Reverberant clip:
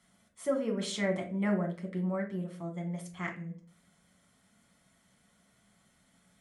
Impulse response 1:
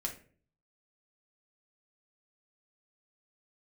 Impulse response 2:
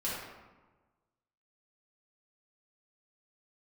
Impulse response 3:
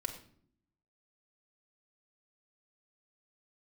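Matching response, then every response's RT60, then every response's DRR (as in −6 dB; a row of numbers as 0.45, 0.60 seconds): 1; 0.45 s, 1.3 s, non-exponential decay; 0.5, −9.0, 2.0 decibels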